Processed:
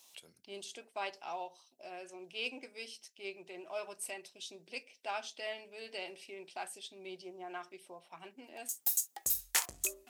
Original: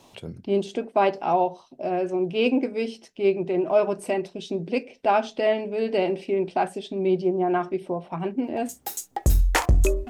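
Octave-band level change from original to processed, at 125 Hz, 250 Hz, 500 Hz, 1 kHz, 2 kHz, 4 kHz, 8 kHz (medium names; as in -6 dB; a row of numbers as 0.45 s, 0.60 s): -36.5 dB, -27.5 dB, -23.0 dB, -18.5 dB, -10.5 dB, -6.0 dB, no reading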